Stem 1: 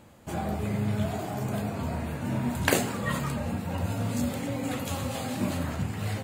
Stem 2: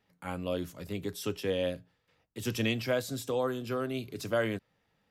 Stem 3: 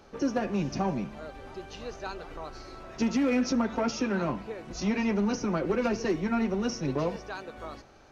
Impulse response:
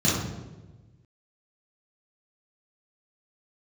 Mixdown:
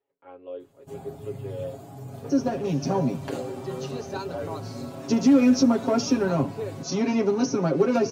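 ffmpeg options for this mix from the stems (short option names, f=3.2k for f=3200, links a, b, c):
-filter_complex "[0:a]acrossover=split=5600[a][b];[b]acompressor=threshold=-47dB:ratio=4:attack=1:release=60[c];[a][c]amix=inputs=2:normalize=0,adelay=600,volume=-10.5dB[d];[1:a]lowpass=f=2.9k:w=0.5412,lowpass=f=2.9k:w=1.3066,lowshelf=f=270:t=q:w=3:g=-12.5,volume=-9.5dB[e];[2:a]highpass=f=120:w=0.5412,highpass=f=120:w=1.3066,dynaudnorm=f=440:g=3:m=4dB,adelay=2100,volume=1.5dB[f];[d][e][f]amix=inputs=3:normalize=0,equalizer=f=2k:w=0.78:g=-10,aecho=1:1:7.3:0.81"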